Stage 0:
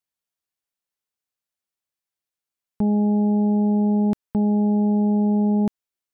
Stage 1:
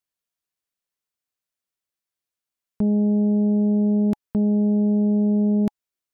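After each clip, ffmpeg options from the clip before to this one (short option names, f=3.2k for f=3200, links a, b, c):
-af "bandreject=f=840:w=13"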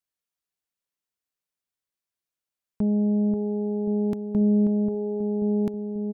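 -filter_complex "[0:a]asplit=2[a][b];[b]adelay=536,lowpass=f=820:p=1,volume=-5dB,asplit=2[c][d];[d]adelay=536,lowpass=f=820:p=1,volume=0.51,asplit=2[e][f];[f]adelay=536,lowpass=f=820:p=1,volume=0.51,asplit=2[g][h];[h]adelay=536,lowpass=f=820:p=1,volume=0.51,asplit=2[i][j];[j]adelay=536,lowpass=f=820:p=1,volume=0.51,asplit=2[k][l];[l]adelay=536,lowpass=f=820:p=1,volume=0.51[m];[a][c][e][g][i][k][m]amix=inputs=7:normalize=0,volume=-3dB"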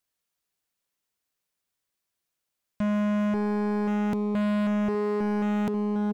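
-af "asoftclip=type=hard:threshold=-30.5dB,volume=6.5dB"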